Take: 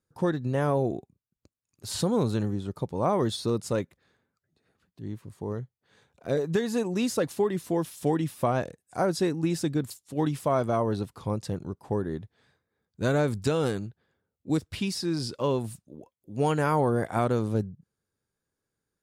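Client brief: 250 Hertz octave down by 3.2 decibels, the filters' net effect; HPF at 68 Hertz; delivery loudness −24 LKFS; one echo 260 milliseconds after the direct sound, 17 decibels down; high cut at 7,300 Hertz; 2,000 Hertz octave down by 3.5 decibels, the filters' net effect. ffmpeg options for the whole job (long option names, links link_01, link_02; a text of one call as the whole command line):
ffmpeg -i in.wav -af "highpass=68,lowpass=7300,equalizer=frequency=250:width_type=o:gain=-4.5,equalizer=frequency=2000:width_type=o:gain=-5,aecho=1:1:260:0.141,volume=6.5dB" out.wav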